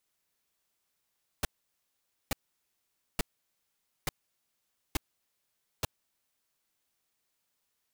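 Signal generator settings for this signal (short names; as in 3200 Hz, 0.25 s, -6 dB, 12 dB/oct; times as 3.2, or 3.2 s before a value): noise bursts pink, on 0.02 s, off 0.86 s, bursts 6, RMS -28.5 dBFS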